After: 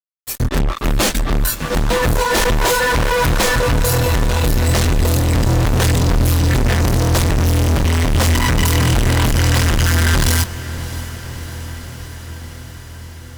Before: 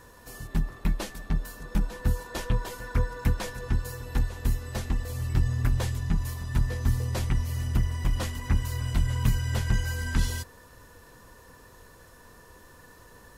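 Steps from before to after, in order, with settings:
noise reduction from a noise print of the clip's start 22 dB
fuzz pedal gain 50 dB, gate −53 dBFS
feedback delay with all-pass diffusion 645 ms, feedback 73%, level −15 dB

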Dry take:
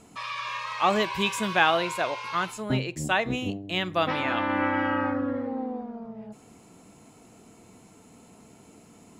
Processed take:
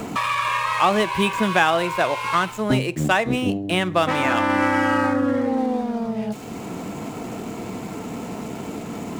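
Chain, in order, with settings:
running median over 9 samples
multiband upward and downward compressor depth 70%
level +7 dB

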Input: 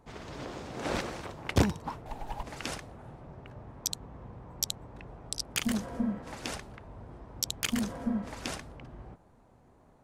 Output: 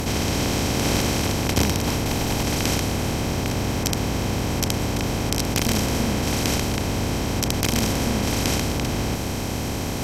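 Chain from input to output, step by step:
compressor on every frequency bin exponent 0.2

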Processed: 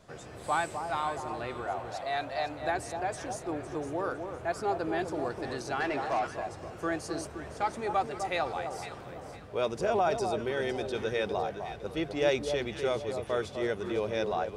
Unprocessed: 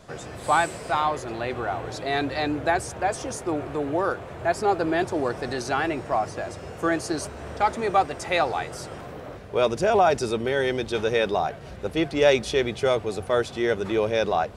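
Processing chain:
0:01.69–0:02.62: low shelf with overshoot 490 Hz −6 dB, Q 3
delay that swaps between a low-pass and a high-pass 254 ms, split 1,100 Hz, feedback 55%, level −6 dB
0:05.80–0:06.27: mid-hump overdrive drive 15 dB, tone 3,300 Hz, clips at −13.5 dBFS
level −8.5 dB

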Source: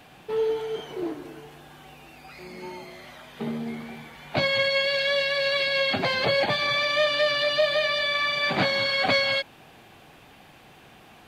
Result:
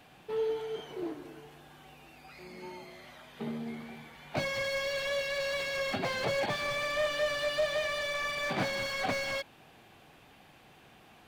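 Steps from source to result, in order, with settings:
slew-rate limiting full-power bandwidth 110 Hz
level −6.5 dB

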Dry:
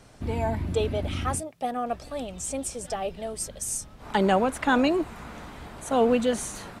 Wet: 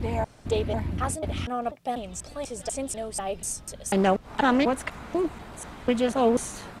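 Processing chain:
slices reordered back to front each 245 ms, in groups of 2
highs frequency-modulated by the lows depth 0.19 ms

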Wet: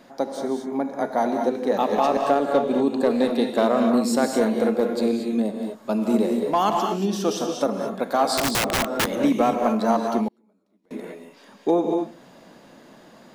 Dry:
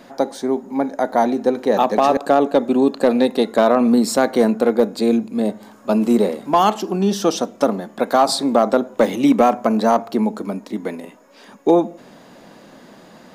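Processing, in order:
reverb whose tail is shaped and stops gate 260 ms rising, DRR 2.5 dB
0:08.37–0:09.15: wrap-around overflow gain 9.5 dB
0:10.28–0:10.91: gate with flip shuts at −21 dBFS, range −35 dB
level −6.5 dB

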